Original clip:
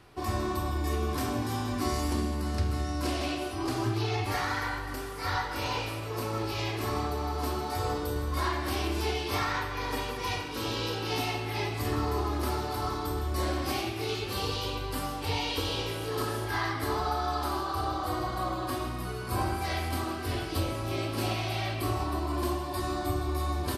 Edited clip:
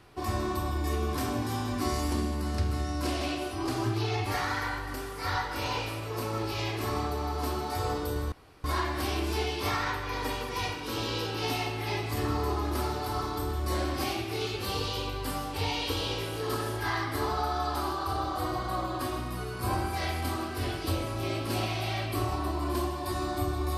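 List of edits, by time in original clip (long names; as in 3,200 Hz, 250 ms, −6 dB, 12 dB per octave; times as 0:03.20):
0:08.32: splice in room tone 0.32 s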